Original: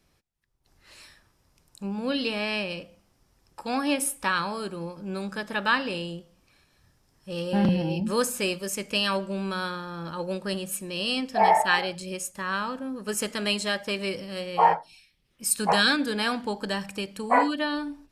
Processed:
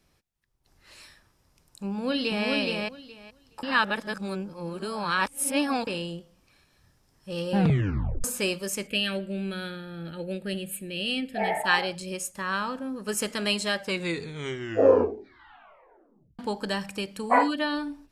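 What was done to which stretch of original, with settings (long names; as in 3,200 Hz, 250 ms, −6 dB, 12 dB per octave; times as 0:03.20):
0:01.89–0:02.46: delay throw 420 ms, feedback 15%, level −2 dB
0:03.63–0:05.87: reverse
0:07.57: tape stop 0.67 s
0:08.87–0:11.64: phaser with its sweep stopped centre 2,500 Hz, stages 4
0:13.77: tape stop 2.62 s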